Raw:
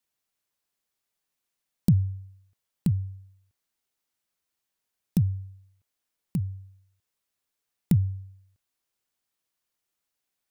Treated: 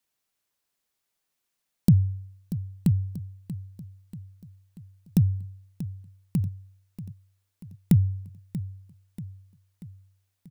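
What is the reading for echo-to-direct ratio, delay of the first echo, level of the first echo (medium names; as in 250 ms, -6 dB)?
-12.0 dB, 636 ms, -13.5 dB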